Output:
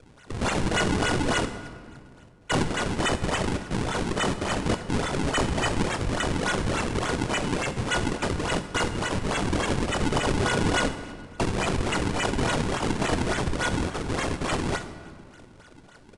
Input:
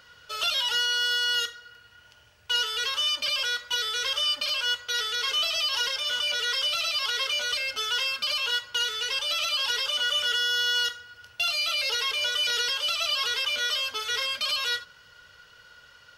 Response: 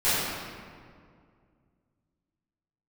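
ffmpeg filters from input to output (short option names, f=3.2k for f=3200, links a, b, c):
-filter_complex "[0:a]acrusher=samples=42:mix=1:aa=0.000001:lfo=1:lforange=67.2:lforate=3.5,asplit=2[a][b];[1:a]atrim=start_sample=2205,highshelf=f=6.2k:g=10[c];[b][c]afir=irnorm=-1:irlink=0,volume=-26.5dB[d];[a][d]amix=inputs=2:normalize=0,aresample=22050,aresample=44100,volume=1dB"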